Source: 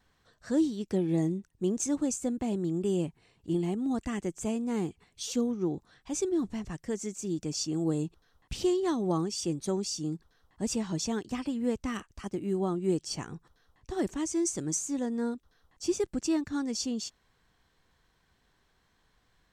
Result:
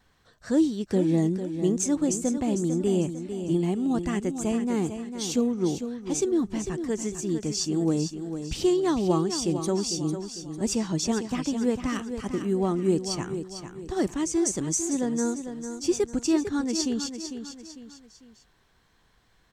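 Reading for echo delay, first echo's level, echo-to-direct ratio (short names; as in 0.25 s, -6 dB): 0.45 s, -9.0 dB, -8.5 dB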